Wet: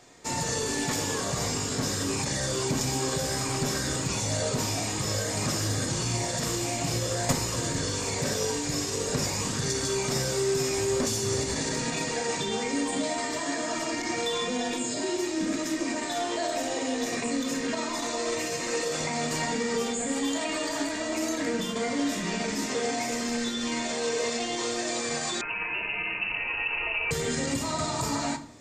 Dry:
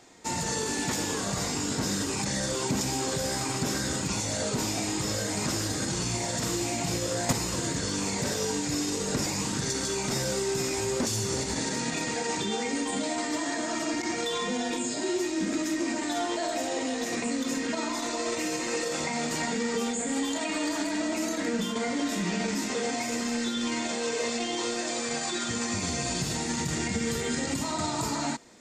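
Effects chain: reverb RT60 0.65 s, pre-delay 7 ms, DRR 8.5 dB; 25.41–27.11 inverted band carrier 2800 Hz

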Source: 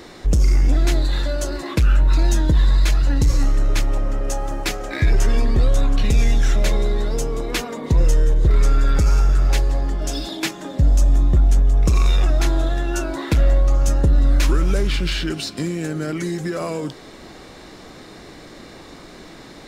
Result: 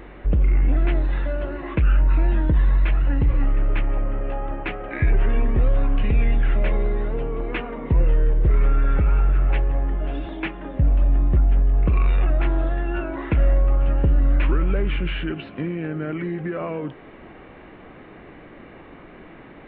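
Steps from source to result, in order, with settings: steep low-pass 2900 Hz 48 dB/oct; reverse echo 1.092 s -22 dB; gain -2.5 dB

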